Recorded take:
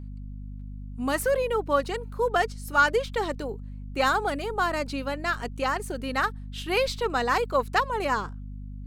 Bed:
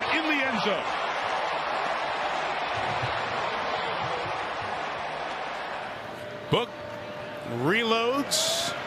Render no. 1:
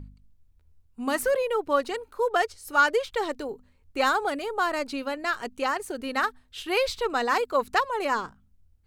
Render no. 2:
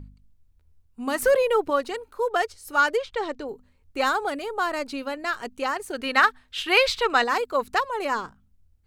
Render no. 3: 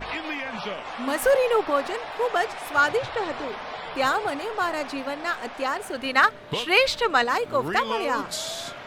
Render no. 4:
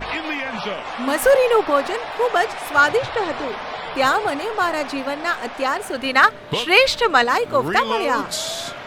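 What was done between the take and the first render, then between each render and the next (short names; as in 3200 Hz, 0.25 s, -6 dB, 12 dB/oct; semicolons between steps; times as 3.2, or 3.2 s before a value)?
de-hum 50 Hz, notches 5
1.22–1.7 gain +5 dB; 2.97–3.48 air absorption 69 m; 5.93–7.24 bell 2200 Hz +9.5 dB 3 oct
add bed -6 dB
gain +5.5 dB; limiter -2 dBFS, peak gain reduction 2 dB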